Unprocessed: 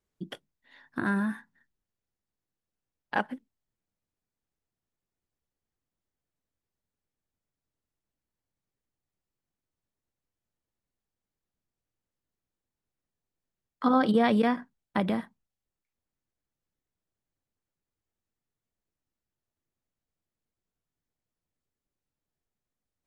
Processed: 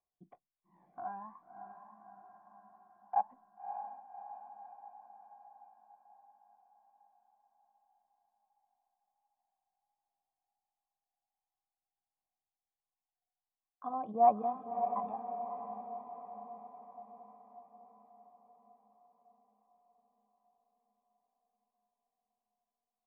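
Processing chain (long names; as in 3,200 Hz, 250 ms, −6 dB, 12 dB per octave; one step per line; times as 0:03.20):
phase shifter 0.49 Hz, delay 1.4 ms, feedback 69%
formant resonators in series a
feedback delay with all-pass diffusion 590 ms, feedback 59%, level −8 dB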